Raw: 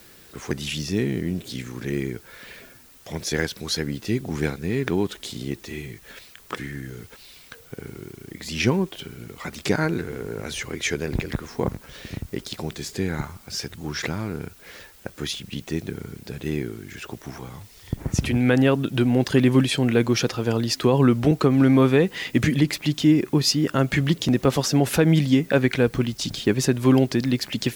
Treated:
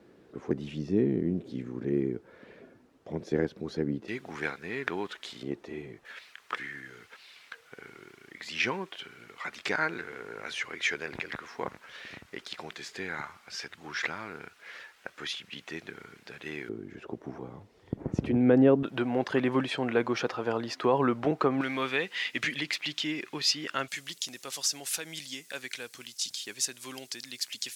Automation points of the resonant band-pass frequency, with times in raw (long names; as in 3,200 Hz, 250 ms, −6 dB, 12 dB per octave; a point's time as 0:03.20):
resonant band-pass, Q 0.91
340 Hz
from 0:04.08 1,500 Hz
from 0:05.43 600 Hz
from 0:06.05 1,700 Hz
from 0:16.69 400 Hz
from 0:18.83 970 Hz
from 0:21.61 2,600 Hz
from 0:23.88 7,700 Hz